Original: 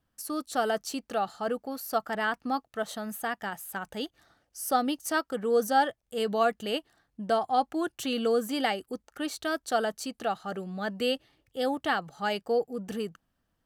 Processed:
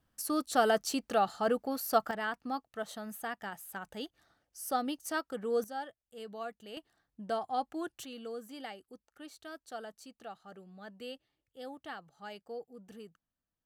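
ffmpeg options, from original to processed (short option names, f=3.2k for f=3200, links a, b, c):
-af "asetnsamples=n=441:p=0,asendcmd='2.11 volume volume -6.5dB;5.64 volume volume -16dB;6.77 volume volume -8dB;8.05 volume volume -16dB',volume=1dB"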